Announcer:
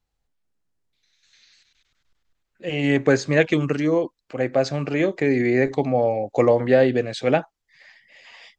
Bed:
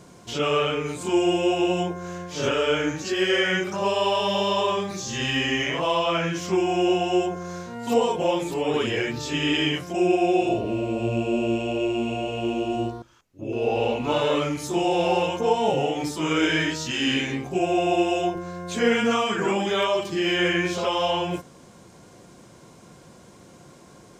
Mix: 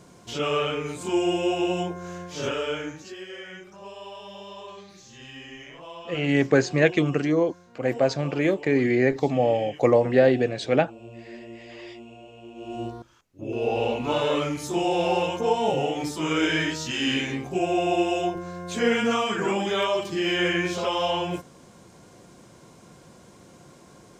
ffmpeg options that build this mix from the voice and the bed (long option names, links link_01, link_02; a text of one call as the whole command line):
ffmpeg -i stem1.wav -i stem2.wav -filter_complex "[0:a]adelay=3450,volume=-1.5dB[link_01];[1:a]volume=14dB,afade=type=out:start_time=2.26:duration=0.99:silence=0.16788,afade=type=in:start_time=12.54:duration=0.52:silence=0.149624[link_02];[link_01][link_02]amix=inputs=2:normalize=0" out.wav